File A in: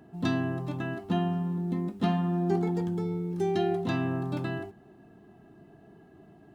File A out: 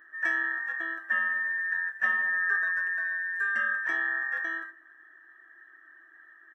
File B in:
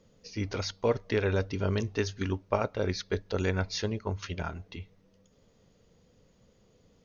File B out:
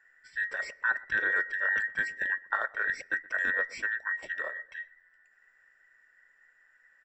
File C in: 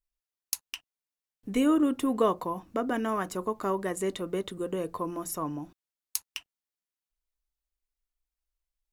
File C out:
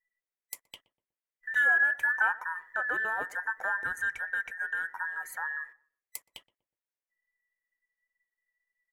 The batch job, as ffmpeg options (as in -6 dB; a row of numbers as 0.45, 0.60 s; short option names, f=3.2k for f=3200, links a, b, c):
-filter_complex "[0:a]afftfilt=real='real(if(between(b,1,1012),(2*floor((b-1)/92)+1)*92-b,b),0)':imag='imag(if(between(b,1,1012),(2*floor((b-1)/92)+1)*92-b,b),0)*if(between(b,1,1012),-1,1)':win_size=2048:overlap=0.75,equalizer=f=125:t=o:w=1:g=-3,equalizer=f=500:t=o:w=1:g=8,equalizer=f=2k:t=o:w=1:g=11,equalizer=f=4k:t=o:w=1:g=-9,asplit=2[a][b];[b]adelay=122,lowpass=f=820:p=1,volume=-17.5dB,asplit=2[c][d];[d]adelay=122,lowpass=f=820:p=1,volume=0.4,asplit=2[e][f];[f]adelay=122,lowpass=f=820:p=1,volume=0.4[g];[c][e][g]amix=inputs=3:normalize=0[h];[a][h]amix=inputs=2:normalize=0,volume=-8.5dB"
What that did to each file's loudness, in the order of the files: +2.5, +1.5, +1.5 LU